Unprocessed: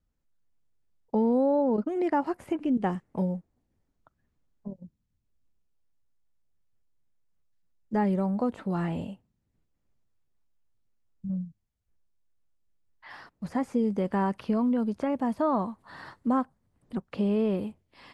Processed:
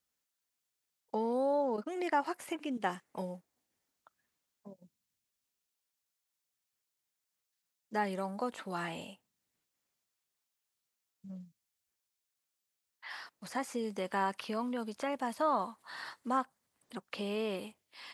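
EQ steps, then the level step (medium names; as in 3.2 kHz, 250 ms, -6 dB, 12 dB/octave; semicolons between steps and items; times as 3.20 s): high-pass 990 Hz 6 dB/octave; treble shelf 2.6 kHz +9 dB; 0.0 dB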